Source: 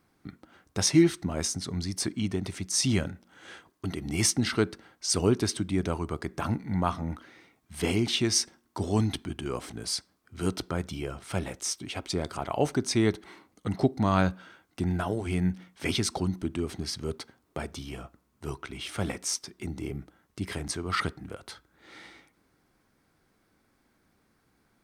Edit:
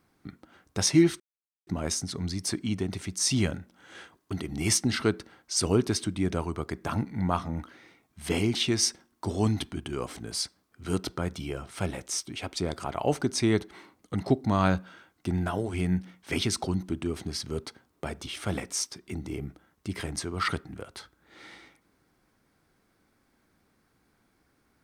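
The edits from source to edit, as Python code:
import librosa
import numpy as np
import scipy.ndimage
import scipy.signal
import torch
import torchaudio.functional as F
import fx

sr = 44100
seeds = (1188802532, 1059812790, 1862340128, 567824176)

y = fx.edit(x, sr, fx.insert_silence(at_s=1.2, length_s=0.47),
    fx.cut(start_s=17.8, length_s=0.99), tone=tone)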